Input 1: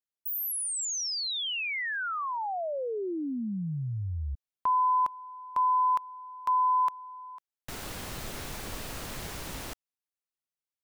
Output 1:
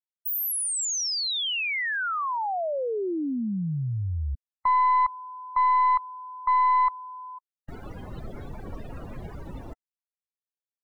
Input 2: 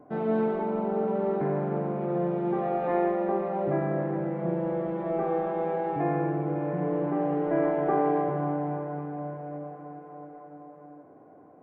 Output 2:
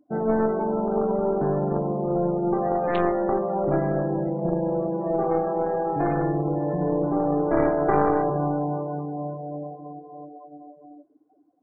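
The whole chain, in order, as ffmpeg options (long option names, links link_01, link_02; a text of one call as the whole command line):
ffmpeg -i in.wav -af "aeval=exprs='0.224*(cos(1*acos(clip(val(0)/0.224,-1,1)))-cos(1*PI/2))+0.0891*(cos(4*acos(clip(val(0)/0.224,-1,1)))-cos(4*PI/2))+0.00794*(cos(5*acos(clip(val(0)/0.224,-1,1)))-cos(5*PI/2))+0.0398*(cos(6*acos(clip(val(0)/0.224,-1,1)))-cos(6*PI/2))':channel_layout=same,afftdn=noise_reduction=29:noise_floor=-36,volume=3dB" out.wav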